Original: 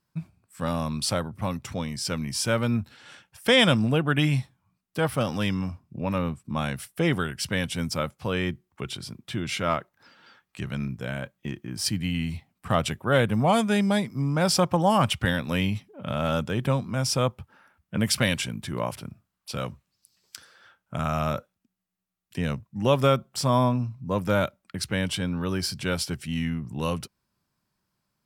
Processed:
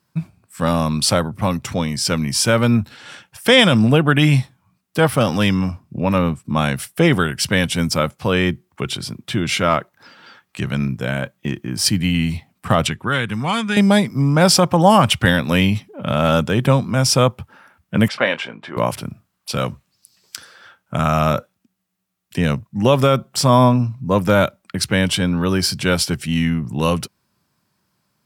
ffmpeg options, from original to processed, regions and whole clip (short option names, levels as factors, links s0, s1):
-filter_complex "[0:a]asettb=1/sr,asplit=3[s0][s1][s2];[s0]atrim=end=12.874[s3];[s1]atrim=start=12.87:end=13.77,asetpts=PTS-STARTPTS,afade=t=in:d=0.004:c=qsin,afade=t=out:st=0.896:d=0.004:c=qsin,lowpass=9300,equalizer=f=620:t=o:w=0.74:g=-11,acrossover=split=970|4000[s4][s5][s6];[s4]acompressor=threshold=0.0251:ratio=4[s7];[s5]acompressor=threshold=0.0355:ratio=4[s8];[s6]acompressor=threshold=0.00447:ratio=4[s9];[s7][s8][s9]amix=inputs=3:normalize=0[s10];[s2]atrim=start=13.766[s11];[s3][s10]acrossfade=d=0.004:c1=hsin:c2=qsin[s12];[s12][s11]acrossfade=d=0.004:c1=qsin:c2=hsin,asettb=1/sr,asplit=3[s13][s14][s15];[s13]atrim=end=18.084[s16];[s14]atrim=start=18.08:end=18.77,asetpts=PTS-STARTPTS,afade=t=in:d=0.004:c=qsin,afade=t=out:st=0.686:d=0.004:c=qsin,highpass=540,lowpass=2500,tiltshelf=f=1300:g=3.5,asplit=2[s17][s18];[s18]adelay=25,volume=0.251[s19];[s17][s19]amix=inputs=2:normalize=0,atrim=end_sample=30429[s20];[s15]atrim=start=18.766[s21];[s16][s20]acrossfade=d=0.004:c1=hsin:c2=qsin[s22];[s22][s21]acrossfade=d=0.004:c1=qsin:c2=hsin,highpass=79,alimiter=level_in=3.55:limit=0.891:release=50:level=0:latency=1,volume=0.891"